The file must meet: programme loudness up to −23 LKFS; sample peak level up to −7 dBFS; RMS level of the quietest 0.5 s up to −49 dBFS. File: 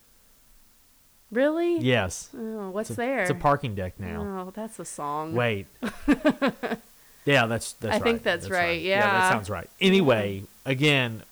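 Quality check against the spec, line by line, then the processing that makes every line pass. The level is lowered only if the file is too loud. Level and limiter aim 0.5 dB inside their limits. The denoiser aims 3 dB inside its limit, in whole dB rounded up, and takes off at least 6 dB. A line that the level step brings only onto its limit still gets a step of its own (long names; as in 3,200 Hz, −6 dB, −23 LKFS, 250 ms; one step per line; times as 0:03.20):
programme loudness −25.0 LKFS: in spec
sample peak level −11.5 dBFS: in spec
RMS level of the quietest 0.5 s −59 dBFS: in spec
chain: no processing needed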